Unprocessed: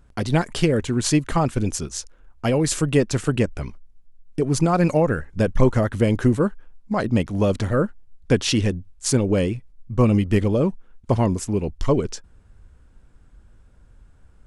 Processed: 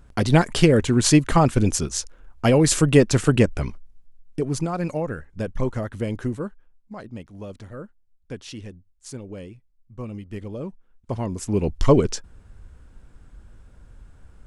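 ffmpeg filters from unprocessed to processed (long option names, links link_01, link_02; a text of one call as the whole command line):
ffmpeg -i in.wav -af "volume=24.5dB,afade=type=out:start_time=3.66:duration=1.05:silence=0.266073,afade=type=out:start_time=6.12:duration=0.99:silence=0.354813,afade=type=in:start_time=10.25:duration=1.07:silence=0.334965,afade=type=in:start_time=11.32:duration=0.42:silence=0.266073" out.wav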